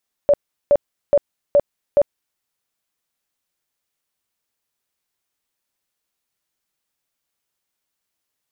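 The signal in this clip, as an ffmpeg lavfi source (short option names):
-f lavfi -i "aevalsrc='0.355*sin(2*PI*576*mod(t,0.42))*lt(mod(t,0.42),27/576)':d=2.1:s=44100"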